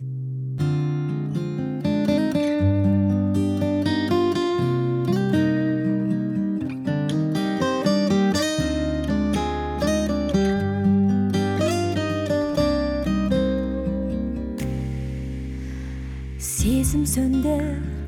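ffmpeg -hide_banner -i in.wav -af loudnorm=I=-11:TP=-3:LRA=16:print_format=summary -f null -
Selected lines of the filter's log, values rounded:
Input Integrated:    -23.0 LUFS
Input True Peak:      -9.2 dBTP
Input LRA:             2.9 LU
Input Threshold:     -33.1 LUFS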